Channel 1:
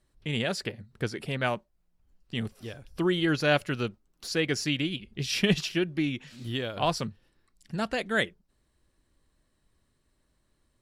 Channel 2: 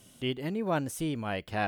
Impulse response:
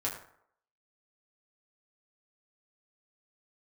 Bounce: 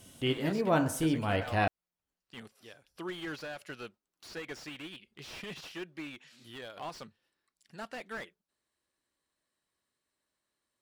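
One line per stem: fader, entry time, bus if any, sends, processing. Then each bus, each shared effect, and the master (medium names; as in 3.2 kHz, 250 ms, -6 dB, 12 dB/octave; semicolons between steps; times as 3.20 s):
-6.5 dB, 0.00 s, no send, high-pass 720 Hz 6 dB/octave; peak limiter -19.5 dBFS, peak gain reduction 9 dB; slew-rate limiter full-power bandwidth 41 Hz
-2.5 dB, 0.00 s, send -4.5 dB, none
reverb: on, RT60 0.65 s, pre-delay 5 ms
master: none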